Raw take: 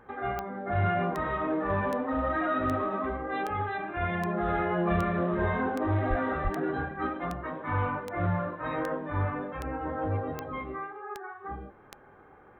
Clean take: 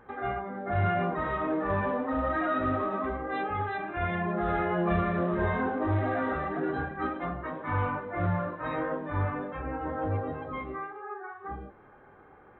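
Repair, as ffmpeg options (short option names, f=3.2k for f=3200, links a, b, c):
-filter_complex "[0:a]adeclick=t=4,asplit=3[a][b][c];[a]afade=t=out:st=6.09:d=0.02[d];[b]highpass=f=140:w=0.5412,highpass=f=140:w=1.3066,afade=t=in:st=6.09:d=0.02,afade=t=out:st=6.21:d=0.02[e];[c]afade=t=in:st=6.21:d=0.02[f];[d][e][f]amix=inputs=3:normalize=0,asplit=3[g][h][i];[g]afade=t=out:st=6.43:d=0.02[j];[h]highpass=f=140:w=0.5412,highpass=f=140:w=1.3066,afade=t=in:st=6.43:d=0.02,afade=t=out:st=6.55:d=0.02[k];[i]afade=t=in:st=6.55:d=0.02[l];[j][k][l]amix=inputs=3:normalize=0"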